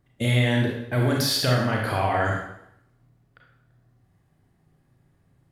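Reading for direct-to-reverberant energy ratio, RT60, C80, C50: -1.5 dB, 0.75 s, 5.5 dB, 2.0 dB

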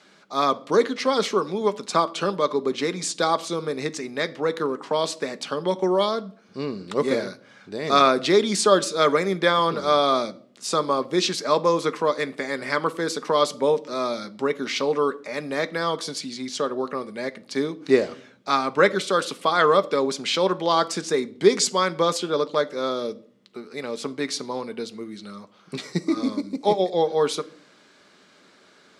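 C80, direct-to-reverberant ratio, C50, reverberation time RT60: 24.5 dB, 10.5 dB, 20.5 dB, 0.50 s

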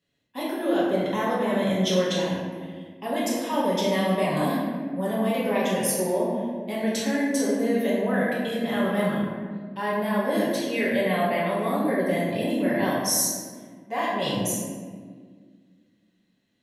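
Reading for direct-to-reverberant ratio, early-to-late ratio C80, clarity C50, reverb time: -8.0 dB, 1.5 dB, -0.5 dB, 1.7 s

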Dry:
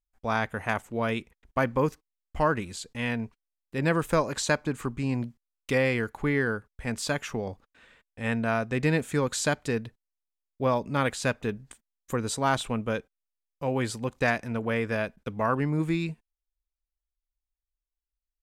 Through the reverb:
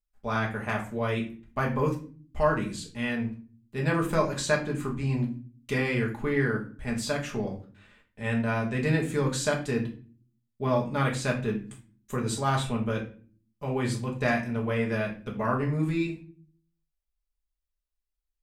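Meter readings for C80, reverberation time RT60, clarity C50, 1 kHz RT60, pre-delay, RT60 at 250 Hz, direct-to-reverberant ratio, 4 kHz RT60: 15.0 dB, 0.40 s, 10.0 dB, 0.35 s, 5 ms, 0.75 s, -1.5 dB, 0.30 s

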